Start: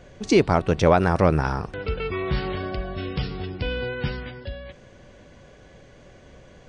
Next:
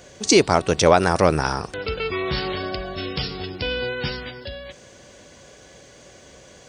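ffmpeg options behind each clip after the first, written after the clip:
-af "highpass=48,bass=f=250:g=-6,treble=f=4000:g=14,volume=1.41"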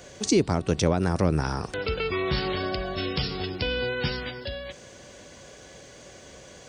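-filter_complex "[0:a]acrossover=split=320[s0][s1];[s1]acompressor=threshold=0.0501:ratio=10[s2];[s0][s2]amix=inputs=2:normalize=0"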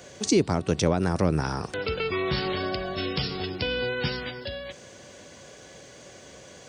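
-af "highpass=76"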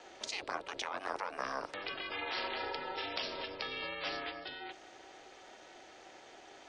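-filter_complex "[0:a]afftfilt=real='re*lt(hypot(re,im),0.158)':imag='im*lt(hypot(re,im),0.158)':win_size=1024:overlap=0.75,aeval=exprs='val(0)*sin(2*PI*200*n/s)':c=same,acrossover=split=320 4600:gain=0.141 1 0.2[s0][s1][s2];[s0][s1][s2]amix=inputs=3:normalize=0,volume=0.794"

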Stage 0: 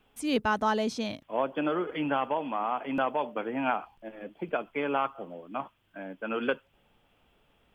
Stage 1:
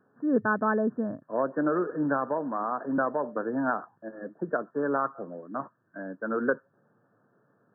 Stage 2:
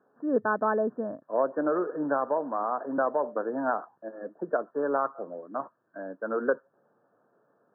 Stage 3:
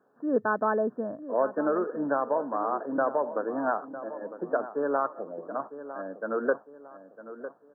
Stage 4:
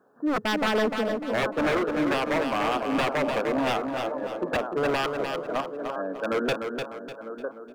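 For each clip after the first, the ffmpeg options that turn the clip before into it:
-af "afftfilt=real='re*between(b*sr/4096,100,1800)':imag='im*between(b*sr/4096,100,1800)':win_size=4096:overlap=0.75,equalizer=f=830:w=3.2:g=-9,volume=1.5"
-af "bandpass=f=670:t=q:w=0.94:csg=0,volume=1.41"
-filter_complex "[0:a]asplit=2[s0][s1];[s1]adelay=954,lowpass=f=1700:p=1,volume=0.237,asplit=2[s2][s3];[s3]adelay=954,lowpass=f=1700:p=1,volume=0.4,asplit=2[s4][s5];[s5]adelay=954,lowpass=f=1700:p=1,volume=0.4,asplit=2[s6][s7];[s7]adelay=954,lowpass=f=1700:p=1,volume=0.4[s8];[s0][s2][s4][s6][s8]amix=inputs=5:normalize=0"
-af "aeval=exprs='0.0596*(abs(mod(val(0)/0.0596+3,4)-2)-1)':c=same,aecho=1:1:299|598|897|1196:0.501|0.185|0.0686|0.0254,volume=1.78"

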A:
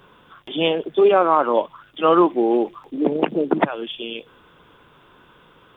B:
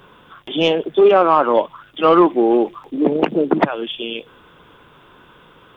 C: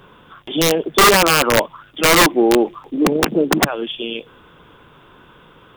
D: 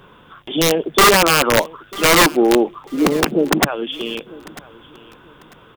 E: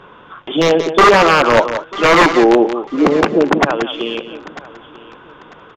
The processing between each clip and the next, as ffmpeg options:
-af "acontrast=29,volume=0.891"
-af "lowshelf=f=240:g=3.5,aeval=exprs='(mod(2*val(0)+1,2)-1)/2':c=same"
-af "aecho=1:1:945|1890:0.0891|0.0232"
-filter_complex "[0:a]aecho=1:1:179:0.266,aresample=16000,aresample=44100,asplit=2[s0][s1];[s1]highpass=f=720:p=1,volume=3.55,asoftclip=type=tanh:threshold=0.75[s2];[s0][s2]amix=inputs=2:normalize=0,lowpass=f=1200:p=1,volume=0.501,volume=1.58"

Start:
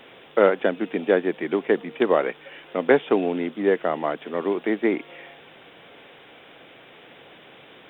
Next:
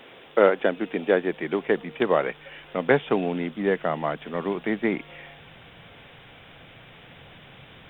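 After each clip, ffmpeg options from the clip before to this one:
-af "asubboost=boost=10:cutoff=110"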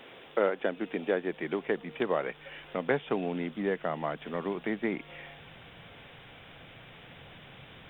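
-af "acompressor=threshold=0.0282:ratio=1.5,volume=0.75"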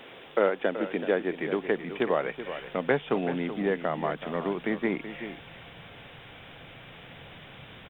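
-af "aecho=1:1:379:0.282,volume=1.41"

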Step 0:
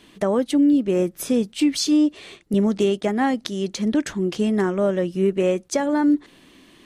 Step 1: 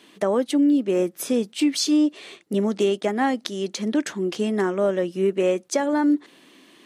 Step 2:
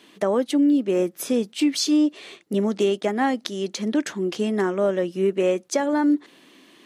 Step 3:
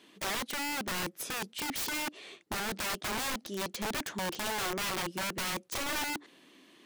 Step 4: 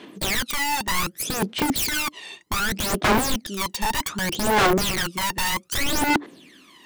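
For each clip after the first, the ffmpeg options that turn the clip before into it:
-af "highpass=240"
-af "equalizer=f=8700:w=3.8:g=-2.5"
-af "aeval=exprs='(mod(12.6*val(0)+1,2)-1)/12.6':c=same,volume=0.447"
-af "aphaser=in_gain=1:out_gain=1:delay=1.1:decay=0.77:speed=0.65:type=sinusoidal,volume=2.11"

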